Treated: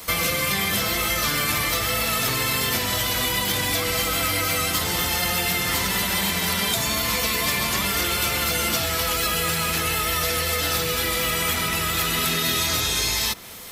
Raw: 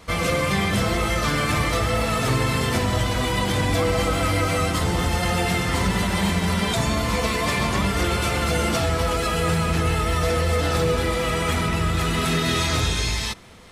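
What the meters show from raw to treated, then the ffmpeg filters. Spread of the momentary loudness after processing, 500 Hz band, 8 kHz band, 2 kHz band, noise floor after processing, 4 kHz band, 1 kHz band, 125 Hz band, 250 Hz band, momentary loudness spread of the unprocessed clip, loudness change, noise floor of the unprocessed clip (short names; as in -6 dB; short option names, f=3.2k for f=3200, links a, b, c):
1 LU, -5.5 dB, +6.5 dB, +1.5 dB, -25 dBFS, +4.5 dB, -2.5 dB, -8.5 dB, -6.5 dB, 1 LU, +0.5 dB, -25 dBFS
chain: -filter_complex "[0:a]aemphasis=mode=production:type=75kf,aexciter=amount=3.2:drive=5.9:freq=12k,lowshelf=f=190:g=-7,acrossover=split=260|1400|5900[a][b][c][d];[a]acompressor=threshold=-35dB:ratio=4[e];[b]acompressor=threshold=-35dB:ratio=4[f];[c]acompressor=threshold=-28dB:ratio=4[g];[d]acompressor=threshold=-33dB:ratio=4[h];[e][f][g][h]amix=inputs=4:normalize=0,volume=3.5dB"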